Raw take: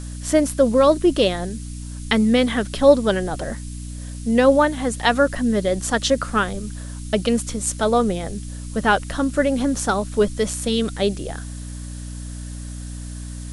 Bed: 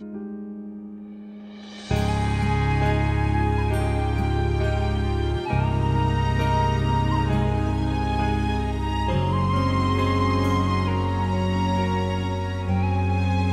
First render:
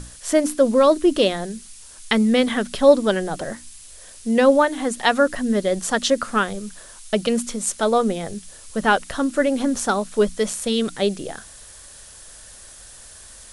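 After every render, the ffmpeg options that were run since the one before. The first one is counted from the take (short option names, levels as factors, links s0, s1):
-af "bandreject=f=60:t=h:w=6,bandreject=f=120:t=h:w=6,bandreject=f=180:t=h:w=6,bandreject=f=240:t=h:w=6,bandreject=f=300:t=h:w=6"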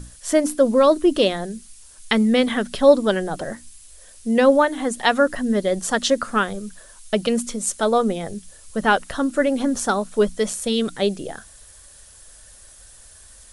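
-af "afftdn=nr=6:nf=-43"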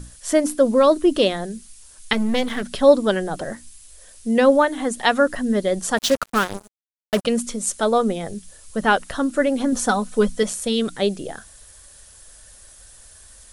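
-filter_complex "[0:a]asettb=1/sr,asplit=3[s0][s1][s2];[s0]atrim=end=2.134[s3];[s1]atrim=start=2.13:end=2.63,asetpts=PTS-STARTPTS,afade=t=in:d=0.004:c=qsin,afade=t=out:st=0.496:d=0.004:c=qsin,aeval=exprs='if(lt(val(0),0),0.251*val(0),val(0))':c=same[s4];[s2]atrim=start=2.626[s5];[s3][s4]acrossfade=d=0.004:c1=hsin:c2=qsin[s6];[s6][s5]acrossfade=d=0.004:c1=qsin:c2=hsin,asettb=1/sr,asplit=3[s7][s8][s9];[s7]atrim=end=5.974[s10];[s8]atrim=start=5.97:end=7.25,asetpts=PTS-STARTPTS,afade=t=in:d=0.004:c=qsin,afade=t=out:st=1.276:d=0.004:c=qsin,acrusher=bits=3:mix=0:aa=0.5[s11];[s9]atrim=start=7.246[s12];[s10][s11]acrossfade=d=0.004:c1=hsin:c2=qsin[s13];[s13][s12]acrossfade=d=0.004:c1=qsin:c2=hsin,asettb=1/sr,asplit=3[s14][s15][s16];[s14]atrim=end=9.724[s17];[s15]atrim=start=9.72:end=10.43,asetpts=PTS-STARTPTS,afade=t=in:d=0.004:c=qsin,afade=t=out:st=0.706:d=0.004:c=qsin,aecho=1:1:4:0.65,atrim=end_sample=31311[s18];[s16]atrim=start=10.426[s19];[s17][s18]acrossfade=d=0.004:c1=hsin:c2=qsin[s20];[s20][s19]acrossfade=d=0.004:c1=qsin:c2=hsin"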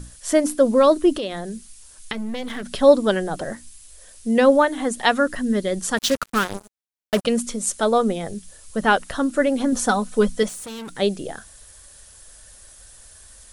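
-filter_complex "[0:a]asettb=1/sr,asplit=3[s0][s1][s2];[s0]atrim=end=1.164[s3];[s1]atrim=start=1.16:end=2.73,asetpts=PTS-STARTPTS,afade=t=in:d=0.004:c=qsin,afade=t=out:st=1.566:d=0.004:c=qsin,acompressor=threshold=0.0562:ratio=4:attack=3.2:release=140:knee=1:detection=peak[s4];[s2]atrim=start=2.726[s5];[s3][s4]acrossfade=d=0.004:c1=hsin:c2=qsin[s6];[s6][s5]acrossfade=d=0.004:c1=qsin:c2=hsin,asettb=1/sr,asplit=3[s7][s8][s9];[s7]atrim=end=5.154[s10];[s8]atrim=start=5.15:end=6.45,asetpts=PTS-STARTPTS,afade=t=in:d=0.004:c=qsin,afade=t=out:st=1.296:d=0.004:c=qsin,equalizer=f=700:t=o:w=0.98:g=-5.5[s11];[s9]atrim=start=6.446[s12];[s10][s11]acrossfade=d=0.004:c1=hsin:c2=qsin[s13];[s13][s12]acrossfade=d=0.004:c1=qsin:c2=hsin,asettb=1/sr,asplit=3[s14][s15][s16];[s14]atrim=end=10.484[s17];[s15]atrim=start=10.48:end=10.96,asetpts=PTS-STARTPTS,afade=t=in:d=0.004:c=qsin,afade=t=out:st=0.476:d=0.004:c=qsin,aeval=exprs='(tanh(39.8*val(0)+0.2)-tanh(0.2))/39.8':c=same[s18];[s16]atrim=start=10.956[s19];[s17][s18]acrossfade=d=0.004:c1=hsin:c2=qsin[s20];[s20][s19]acrossfade=d=0.004:c1=qsin:c2=hsin"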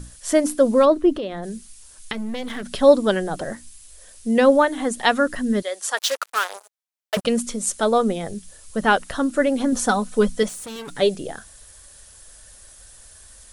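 -filter_complex "[0:a]asplit=3[s0][s1][s2];[s0]afade=t=out:st=0.84:d=0.02[s3];[s1]lowpass=f=1700:p=1,afade=t=in:st=0.84:d=0.02,afade=t=out:st=1.42:d=0.02[s4];[s2]afade=t=in:st=1.42:d=0.02[s5];[s3][s4][s5]amix=inputs=3:normalize=0,asettb=1/sr,asplit=3[s6][s7][s8];[s6]atrim=end=5.624[s9];[s7]atrim=start=5.62:end=7.17,asetpts=PTS-STARTPTS,afade=t=in:d=0.004:c=qsin,afade=t=out:st=1.546:d=0.004:c=qsin,highpass=f=550:w=0.5412,highpass=f=550:w=1.3066[s10];[s8]atrim=start=7.166[s11];[s9][s10]acrossfade=d=0.004:c1=hsin:c2=qsin[s12];[s12][s11]acrossfade=d=0.004:c1=qsin:c2=hsin,asettb=1/sr,asplit=3[s13][s14][s15];[s13]atrim=end=10.754[s16];[s14]atrim=start=10.75:end=11.15,asetpts=PTS-STARTPTS,afade=t=in:d=0.004:c=qsin,afade=t=out:st=0.396:d=0.004:c=qsin,aecho=1:1:7:0.65,atrim=end_sample=17640[s17];[s15]atrim=start=11.146[s18];[s16][s17]acrossfade=d=0.004:c1=hsin:c2=qsin[s19];[s19][s18]acrossfade=d=0.004:c1=qsin:c2=hsin"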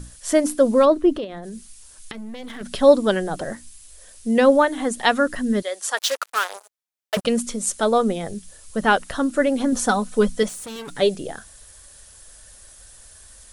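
-filter_complex "[0:a]asettb=1/sr,asplit=3[s0][s1][s2];[s0]atrim=end=1.244[s3];[s1]atrim=start=1.24:end=2.61,asetpts=PTS-STARTPTS,afade=t=in:d=0.004:c=qsin,afade=t=out:st=1.366:d=0.004:c=qsin,acompressor=threshold=0.0316:ratio=6:attack=3.2:release=140:knee=1:detection=peak[s4];[s2]atrim=start=2.606[s5];[s3][s4]acrossfade=d=0.004:c1=hsin:c2=qsin[s6];[s6][s5]acrossfade=d=0.004:c1=qsin:c2=hsin"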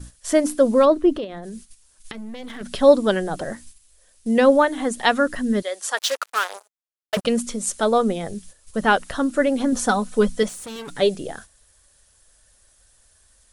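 -af "agate=range=0.316:threshold=0.01:ratio=16:detection=peak,highshelf=f=9500:g=-3.5"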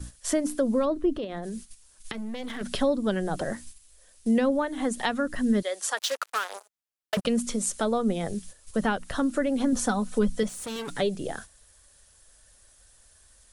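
-filter_complex "[0:a]acrossover=split=220[s0][s1];[s1]acompressor=threshold=0.0501:ratio=4[s2];[s0][s2]amix=inputs=2:normalize=0"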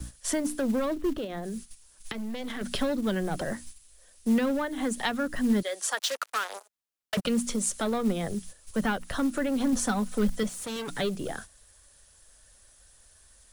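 -filter_complex "[0:a]acrossover=split=290|1200|4100[s0][s1][s2][s3];[s1]asoftclip=type=tanh:threshold=0.0355[s4];[s0][s4][s2][s3]amix=inputs=4:normalize=0,acrusher=bits=6:mode=log:mix=0:aa=0.000001"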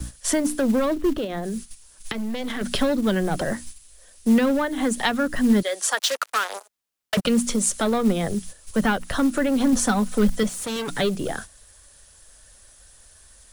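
-af "volume=2.11"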